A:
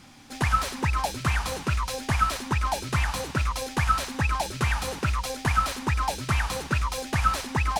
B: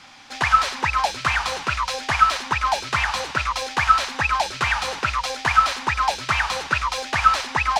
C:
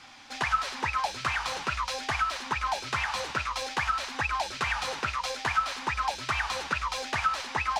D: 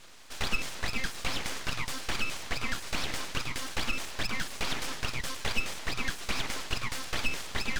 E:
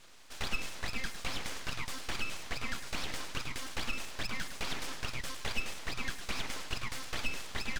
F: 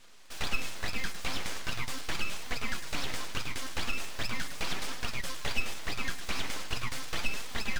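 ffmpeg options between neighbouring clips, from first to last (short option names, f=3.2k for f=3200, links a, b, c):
-filter_complex "[0:a]acrossover=split=590 6400:gain=0.178 1 0.141[a][b][c];[a][b][c]amix=inputs=3:normalize=0,volume=8.5dB"
-af "acompressor=threshold=-24dB:ratio=2,flanger=delay=2.6:depth=6.9:regen=-63:speed=0.47:shape=sinusoidal"
-af "aeval=exprs='abs(val(0))':c=same"
-filter_complex "[0:a]asplit=2[a][b];[b]adelay=105,volume=-13dB,highshelf=f=4k:g=-2.36[c];[a][c]amix=inputs=2:normalize=0,volume=-5dB"
-filter_complex "[0:a]flanger=delay=3.8:depth=8.2:regen=61:speed=0.4:shape=triangular,asplit=2[a][b];[b]acrusher=bits=5:dc=4:mix=0:aa=0.000001,volume=-8dB[c];[a][c]amix=inputs=2:normalize=0,volume=4dB"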